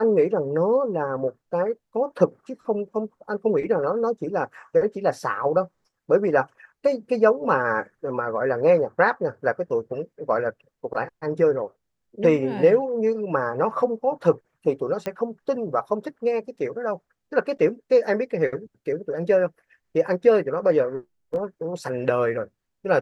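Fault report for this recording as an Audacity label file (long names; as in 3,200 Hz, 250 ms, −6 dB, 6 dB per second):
15.060000	15.060000	click −15 dBFS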